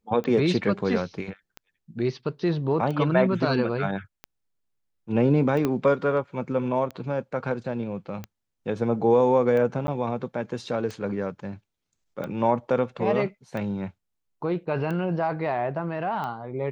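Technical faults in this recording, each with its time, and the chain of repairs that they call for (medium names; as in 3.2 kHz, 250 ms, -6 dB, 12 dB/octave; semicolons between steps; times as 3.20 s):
tick 45 rpm -21 dBFS
5.65 s: pop -12 dBFS
9.87–9.88 s: dropout 10 ms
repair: de-click; interpolate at 9.87 s, 10 ms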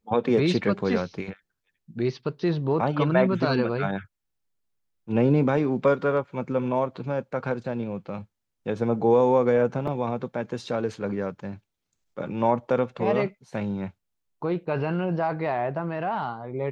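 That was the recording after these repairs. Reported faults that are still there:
5.65 s: pop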